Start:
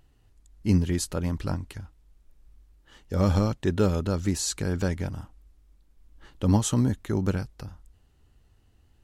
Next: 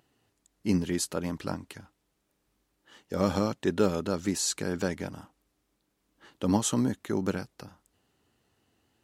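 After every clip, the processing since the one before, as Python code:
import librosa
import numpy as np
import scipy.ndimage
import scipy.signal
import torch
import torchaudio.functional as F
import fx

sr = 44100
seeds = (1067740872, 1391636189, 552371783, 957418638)

y = scipy.signal.sosfilt(scipy.signal.butter(2, 200.0, 'highpass', fs=sr, output='sos'), x)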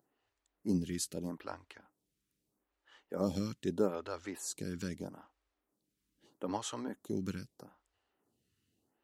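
y = fx.stagger_phaser(x, sr, hz=0.79)
y = y * 10.0 ** (-5.5 / 20.0)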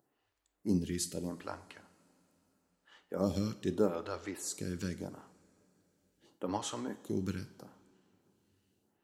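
y = fx.rev_double_slope(x, sr, seeds[0], early_s=0.57, late_s=3.8, knee_db=-19, drr_db=10.5)
y = y * 10.0 ** (1.0 / 20.0)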